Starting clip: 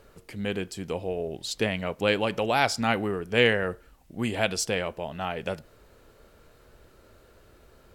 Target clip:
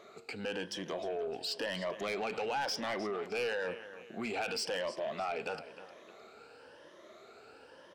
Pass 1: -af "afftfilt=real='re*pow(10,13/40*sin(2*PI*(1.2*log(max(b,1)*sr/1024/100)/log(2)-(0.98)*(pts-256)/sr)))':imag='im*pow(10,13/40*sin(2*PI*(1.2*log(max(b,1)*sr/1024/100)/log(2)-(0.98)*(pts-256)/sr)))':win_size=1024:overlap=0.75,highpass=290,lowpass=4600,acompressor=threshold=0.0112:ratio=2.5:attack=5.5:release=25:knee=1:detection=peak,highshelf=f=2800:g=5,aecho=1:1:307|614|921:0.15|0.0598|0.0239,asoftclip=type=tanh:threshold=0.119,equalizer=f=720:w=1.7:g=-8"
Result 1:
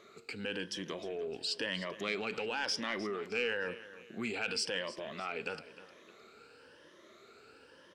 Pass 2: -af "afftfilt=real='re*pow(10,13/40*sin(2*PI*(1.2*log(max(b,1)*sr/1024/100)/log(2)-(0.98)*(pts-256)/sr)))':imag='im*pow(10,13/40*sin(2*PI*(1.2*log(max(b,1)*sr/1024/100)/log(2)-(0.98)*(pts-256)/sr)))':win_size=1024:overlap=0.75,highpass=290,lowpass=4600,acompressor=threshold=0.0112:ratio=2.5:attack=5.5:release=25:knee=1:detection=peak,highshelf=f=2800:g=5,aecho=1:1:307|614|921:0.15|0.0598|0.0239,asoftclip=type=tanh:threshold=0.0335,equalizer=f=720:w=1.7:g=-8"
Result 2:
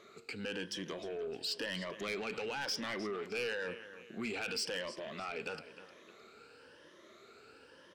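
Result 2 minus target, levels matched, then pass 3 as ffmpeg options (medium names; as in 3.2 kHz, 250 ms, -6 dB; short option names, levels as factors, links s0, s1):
1 kHz band -4.5 dB
-af "afftfilt=real='re*pow(10,13/40*sin(2*PI*(1.2*log(max(b,1)*sr/1024/100)/log(2)-(0.98)*(pts-256)/sr)))':imag='im*pow(10,13/40*sin(2*PI*(1.2*log(max(b,1)*sr/1024/100)/log(2)-(0.98)*(pts-256)/sr)))':win_size=1024:overlap=0.75,highpass=290,lowpass=4600,acompressor=threshold=0.0112:ratio=2.5:attack=5.5:release=25:knee=1:detection=peak,highshelf=f=2800:g=5,aecho=1:1:307|614|921:0.15|0.0598|0.0239,asoftclip=type=tanh:threshold=0.0335,equalizer=f=720:w=1.7:g=3"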